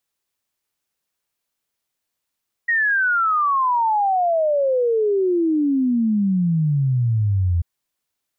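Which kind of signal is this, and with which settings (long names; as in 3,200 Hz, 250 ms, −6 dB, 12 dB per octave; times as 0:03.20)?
exponential sine sweep 1,900 Hz → 83 Hz 4.94 s −15.5 dBFS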